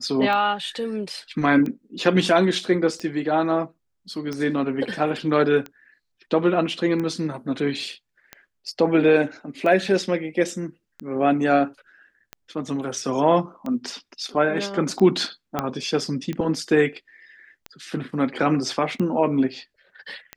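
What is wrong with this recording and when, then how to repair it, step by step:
tick 45 rpm -18 dBFS
15.59 s: pop -9 dBFS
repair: de-click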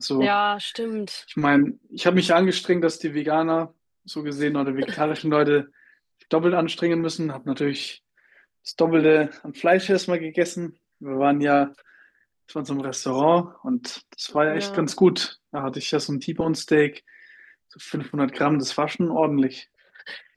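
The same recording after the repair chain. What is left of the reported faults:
15.59 s: pop

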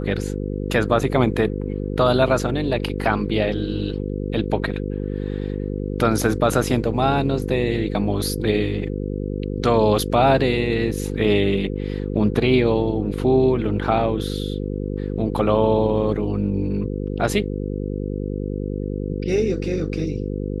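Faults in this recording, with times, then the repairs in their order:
buzz 50 Hz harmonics 10 -26 dBFS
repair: de-hum 50 Hz, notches 10

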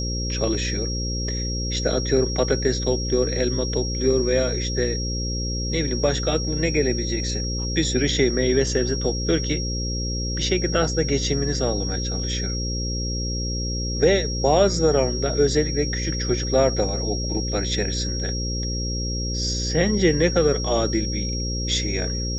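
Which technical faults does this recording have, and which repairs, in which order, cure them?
buzz 60 Hz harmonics 9 -27 dBFS
whine 5.6 kHz -29 dBFS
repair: band-stop 5.6 kHz, Q 30; de-hum 60 Hz, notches 9

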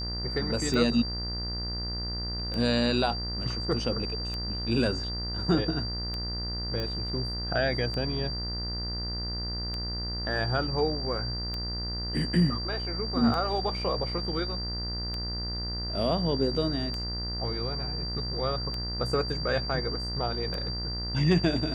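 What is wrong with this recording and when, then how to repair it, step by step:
buzz 60 Hz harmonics 34 -35 dBFS
tick 33 1/3 rpm -21 dBFS
whine 4.7 kHz -34 dBFS
6.80 s: pop -21 dBFS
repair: de-click; de-hum 60 Hz, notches 34; band-stop 4.7 kHz, Q 30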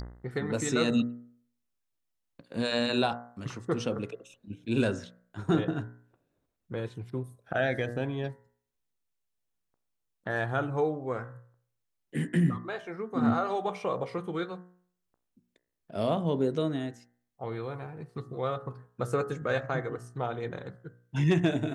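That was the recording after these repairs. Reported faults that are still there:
nothing left

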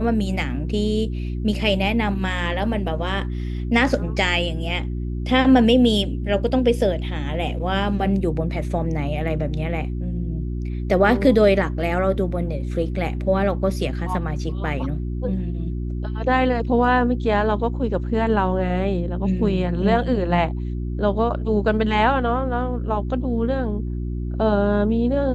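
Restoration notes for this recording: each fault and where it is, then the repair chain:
hum 60 Hz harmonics 6 -26 dBFS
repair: de-hum 60 Hz, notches 6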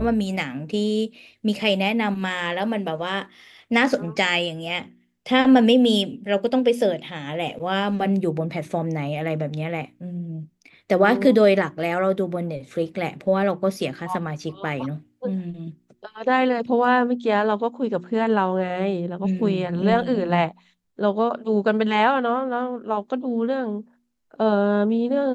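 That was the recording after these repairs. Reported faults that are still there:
nothing left

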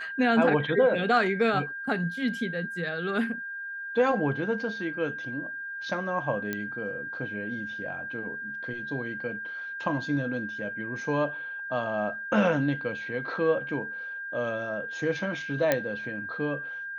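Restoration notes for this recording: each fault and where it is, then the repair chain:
whine 1.6 kHz -34 dBFS
6.53 s: pop -16 dBFS
15.72 s: pop -9 dBFS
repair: de-click; band-stop 1.6 kHz, Q 30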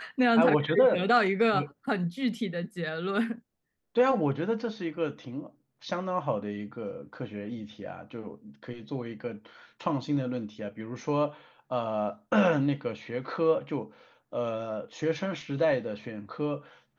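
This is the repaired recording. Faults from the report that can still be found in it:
nothing left

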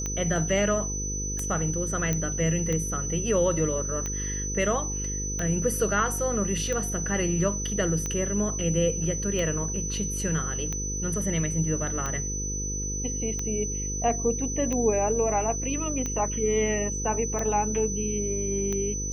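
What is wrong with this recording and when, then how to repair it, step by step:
buzz 50 Hz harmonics 10 -33 dBFS
tick 45 rpm -17 dBFS
whine 6 kHz -31 dBFS
2.13 s: pop -13 dBFS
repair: de-click; de-hum 50 Hz, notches 10; band-stop 6 kHz, Q 30

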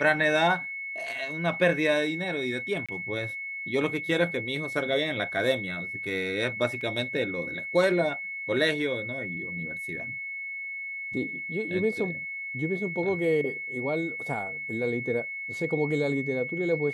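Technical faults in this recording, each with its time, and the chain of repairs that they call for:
whine 2.2 kHz -33 dBFS
2.86–2.89 s: dropout 26 ms
6.81 s: dropout 3.1 ms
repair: band-stop 2.2 kHz, Q 30; interpolate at 2.86 s, 26 ms; interpolate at 6.81 s, 3.1 ms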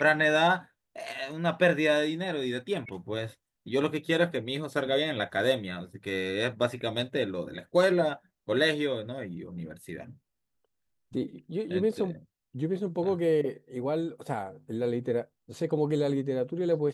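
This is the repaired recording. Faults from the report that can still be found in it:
nothing left

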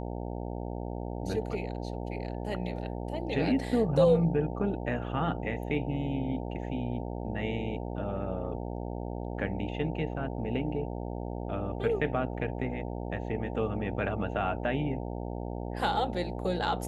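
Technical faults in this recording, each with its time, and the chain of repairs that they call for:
buzz 60 Hz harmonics 15 -36 dBFS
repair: de-hum 60 Hz, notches 15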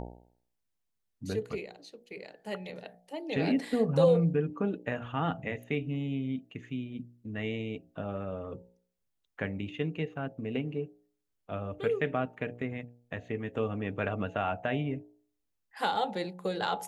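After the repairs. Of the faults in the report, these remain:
nothing left

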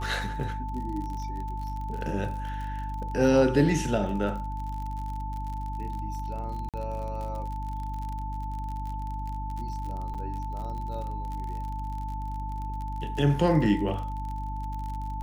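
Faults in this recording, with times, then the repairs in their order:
crackle 44 per s -35 dBFS
hum 50 Hz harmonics 6 -34 dBFS
whine 880 Hz -36 dBFS
6.69–6.74 s: dropout 47 ms
10.14–10.15 s: dropout 6.1 ms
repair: de-click; band-stop 880 Hz, Q 30; de-hum 50 Hz, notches 6; interpolate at 6.69 s, 47 ms; interpolate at 10.14 s, 6.1 ms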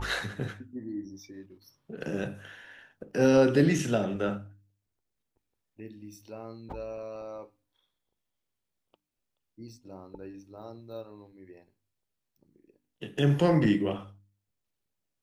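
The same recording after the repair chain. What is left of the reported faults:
nothing left

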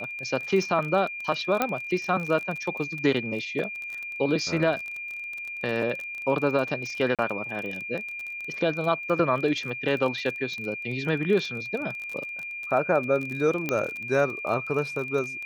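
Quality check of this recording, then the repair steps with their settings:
crackle 26 per s -31 dBFS
whine 2.4 kHz -33 dBFS
1.62 s: pop -9 dBFS
7.15–7.19 s: dropout 37 ms
13.69 s: pop -12 dBFS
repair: de-click; band-stop 2.4 kHz, Q 30; interpolate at 7.15 s, 37 ms

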